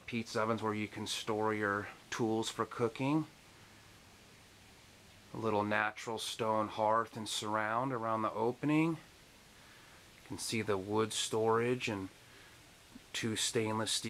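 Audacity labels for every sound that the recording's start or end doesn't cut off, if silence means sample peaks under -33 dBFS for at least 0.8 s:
5.350000	8.940000	sound
10.320000	12.030000	sound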